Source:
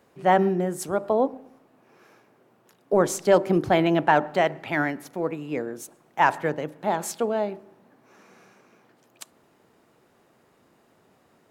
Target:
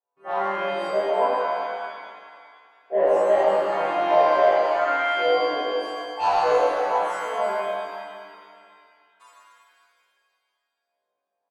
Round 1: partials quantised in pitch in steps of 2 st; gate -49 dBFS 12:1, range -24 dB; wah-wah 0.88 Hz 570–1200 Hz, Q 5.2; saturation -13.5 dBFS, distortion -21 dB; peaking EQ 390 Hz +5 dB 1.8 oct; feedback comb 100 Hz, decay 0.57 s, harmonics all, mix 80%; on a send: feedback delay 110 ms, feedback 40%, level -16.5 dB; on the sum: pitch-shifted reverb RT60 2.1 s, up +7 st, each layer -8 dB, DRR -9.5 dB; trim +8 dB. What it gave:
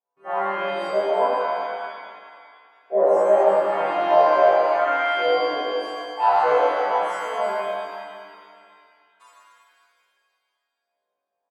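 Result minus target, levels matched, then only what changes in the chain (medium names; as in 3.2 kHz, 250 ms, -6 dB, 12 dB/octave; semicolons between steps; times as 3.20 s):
saturation: distortion -10 dB
change: saturation -21.5 dBFS, distortion -12 dB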